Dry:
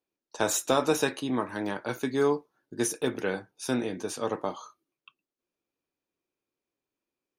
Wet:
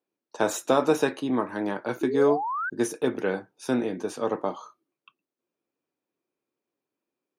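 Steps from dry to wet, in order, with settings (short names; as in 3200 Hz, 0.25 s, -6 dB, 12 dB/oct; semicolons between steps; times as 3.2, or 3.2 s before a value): HPF 150 Hz 12 dB/oct; high shelf 2300 Hz -10 dB; painted sound rise, 2.01–2.7, 320–1600 Hz -33 dBFS; gain +4 dB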